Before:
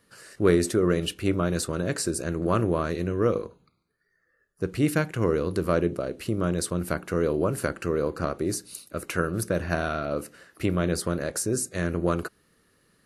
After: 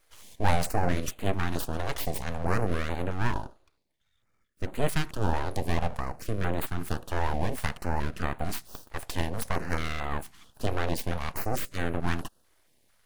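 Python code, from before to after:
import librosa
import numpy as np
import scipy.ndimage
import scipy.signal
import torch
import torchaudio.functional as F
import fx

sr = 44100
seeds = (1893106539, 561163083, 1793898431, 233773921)

y = np.abs(x)
y = fx.filter_held_notch(y, sr, hz=4.5, low_hz=210.0, high_hz=5400.0)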